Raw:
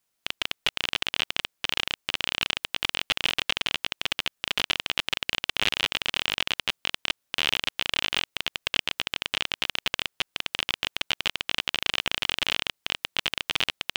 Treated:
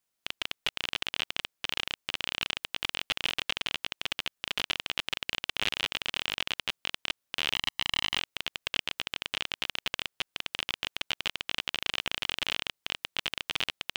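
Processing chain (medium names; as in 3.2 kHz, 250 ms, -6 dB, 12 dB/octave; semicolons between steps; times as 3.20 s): 7.55–8.17 s: comb 1 ms, depth 80%; trim -5 dB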